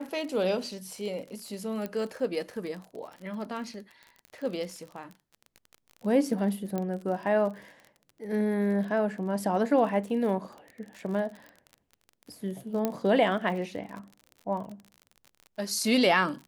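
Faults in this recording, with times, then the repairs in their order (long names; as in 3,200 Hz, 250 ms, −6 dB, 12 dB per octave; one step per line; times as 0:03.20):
surface crackle 39 per second −37 dBFS
0:01.86: click −21 dBFS
0:06.78: click −19 dBFS
0:12.85: click −14 dBFS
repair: click removal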